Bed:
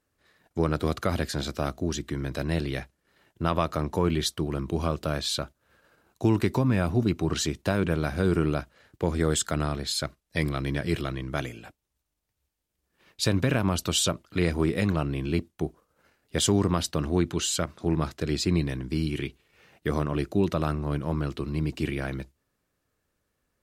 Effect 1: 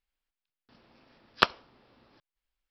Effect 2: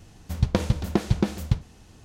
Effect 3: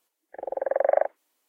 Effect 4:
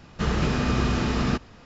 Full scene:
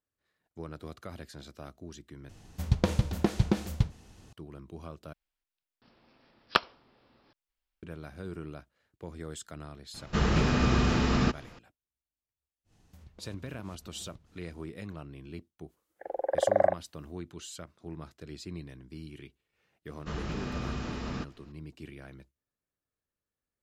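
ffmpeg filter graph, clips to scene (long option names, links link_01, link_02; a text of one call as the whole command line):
ffmpeg -i bed.wav -i cue0.wav -i cue1.wav -i cue2.wav -i cue3.wav -filter_complex "[2:a]asplit=2[link_01][link_02];[4:a]asplit=2[link_03][link_04];[0:a]volume=-16.5dB[link_05];[link_02]acompressor=threshold=-35dB:ratio=6:attack=3.2:release=140:knee=1:detection=peak[link_06];[link_05]asplit=3[link_07][link_08][link_09];[link_07]atrim=end=2.294[link_10];[link_01]atrim=end=2.04,asetpts=PTS-STARTPTS,volume=-3.5dB[link_11];[link_08]atrim=start=4.326:end=5.134[link_12];[1:a]atrim=end=2.7,asetpts=PTS-STARTPTS,volume=-2.5dB[link_13];[link_09]atrim=start=7.826[link_14];[link_03]atrim=end=1.65,asetpts=PTS-STARTPTS,volume=-1.5dB,afade=type=in:duration=0.004:curve=hsin,afade=type=out:start_time=1.646:duration=0.004:curve=hsin,adelay=438354S[link_15];[link_06]atrim=end=2.04,asetpts=PTS-STARTPTS,volume=-14.5dB,afade=type=in:duration=0.1,afade=type=out:start_time=1.94:duration=0.1,adelay=12640[link_16];[3:a]atrim=end=1.48,asetpts=PTS-STARTPTS,volume=-2.5dB,afade=type=in:duration=0.05,afade=type=out:start_time=1.43:duration=0.05,adelay=15670[link_17];[link_04]atrim=end=1.65,asetpts=PTS-STARTPTS,volume=-12dB,afade=type=in:duration=0.004:curve=hsin,afade=type=out:start_time=1.646:duration=0.004:curve=hsin,adelay=19870[link_18];[link_10][link_11]acrossfade=duration=0.004:curve1=hsin:curve2=hsin[link_19];[link_19][link_12]acrossfade=duration=0.004:curve1=hsin:curve2=hsin[link_20];[link_20][link_13]acrossfade=duration=0.004:curve1=hsin:curve2=hsin[link_21];[link_21][link_14]acrossfade=duration=0.004:curve1=hsin:curve2=hsin[link_22];[link_22][link_15][link_16][link_17][link_18]amix=inputs=5:normalize=0" out.wav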